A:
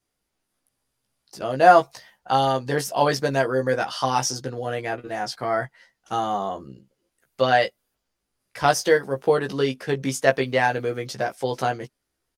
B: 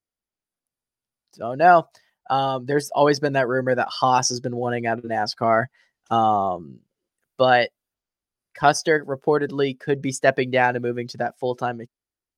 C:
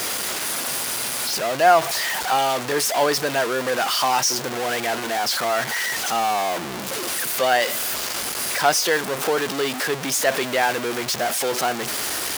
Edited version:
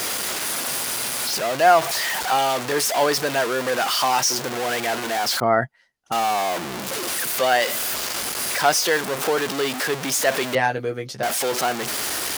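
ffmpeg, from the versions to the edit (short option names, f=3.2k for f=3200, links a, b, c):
-filter_complex "[2:a]asplit=3[a][b][c];[a]atrim=end=5.402[d];[1:a]atrim=start=5.398:end=6.122[e];[b]atrim=start=6.118:end=10.552[f];[0:a]atrim=start=10.548:end=11.232[g];[c]atrim=start=11.228[h];[d][e]acrossfade=d=0.004:c1=hsin:c2=hsin[i];[i][f]acrossfade=d=0.004:c1=hsin:c2=hsin[j];[j][g]acrossfade=d=0.004:c1=hsin:c2=hsin[k];[k][h]acrossfade=d=0.004:c1=hsin:c2=hsin"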